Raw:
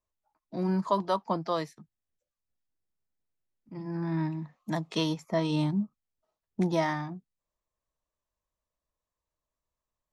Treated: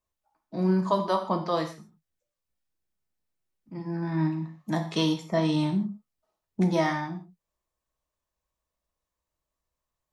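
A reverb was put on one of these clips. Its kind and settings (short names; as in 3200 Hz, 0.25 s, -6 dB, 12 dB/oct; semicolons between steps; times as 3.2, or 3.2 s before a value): non-linear reverb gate 0.18 s falling, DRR 3.5 dB; gain +1.5 dB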